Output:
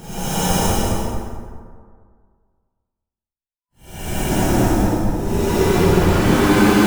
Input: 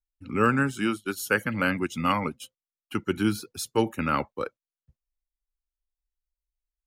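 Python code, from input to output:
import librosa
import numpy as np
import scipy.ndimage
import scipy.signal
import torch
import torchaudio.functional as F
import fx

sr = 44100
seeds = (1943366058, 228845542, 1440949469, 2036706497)

p1 = fx.schmitt(x, sr, flips_db=-38.0)
p2 = fx.spec_box(p1, sr, start_s=2.31, length_s=0.79, low_hz=1000.0, high_hz=5000.0, gain_db=-9)
p3 = fx.paulstretch(p2, sr, seeds[0], factor=7.6, window_s=0.1, from_s=2.38)
p4 = p3 + fx.echo_feedback(p3, sr, ms=222, feedback_pct=21, wet_db=-4, dry=0)
p5 = fx.rev_plate(p4, sr, seeds[1], rt60_s=1.9, hf_ratio=0.4, predelay_ms=100, drr_db=-9.0)
y = p5 * librosa.db_to_amplitude(4.5)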